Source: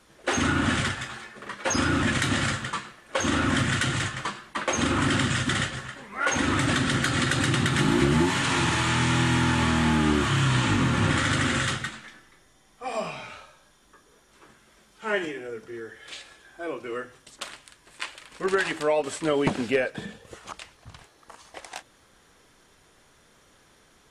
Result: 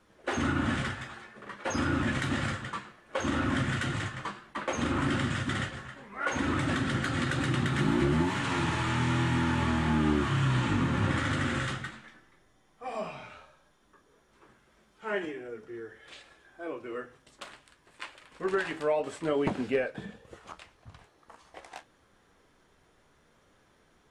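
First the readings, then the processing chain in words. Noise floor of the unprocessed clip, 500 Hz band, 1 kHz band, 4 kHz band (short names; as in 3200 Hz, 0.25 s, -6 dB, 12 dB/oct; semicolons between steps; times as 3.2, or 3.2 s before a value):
-59 dBFS, -4.0 dB, -5.5 dB, -9.5 dB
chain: flange 0.72 Hz, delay 9.3 ms, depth 7.3 ms, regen -57%; high shelf 2900 Hz -9.5 dB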